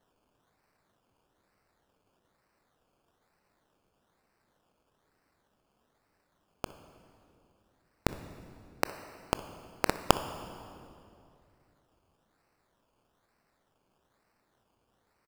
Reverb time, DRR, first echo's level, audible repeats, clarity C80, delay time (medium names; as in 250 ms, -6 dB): 2.5 s, 10.5 dB, -20.0 dB, 1, 12.5 dB, 62 ms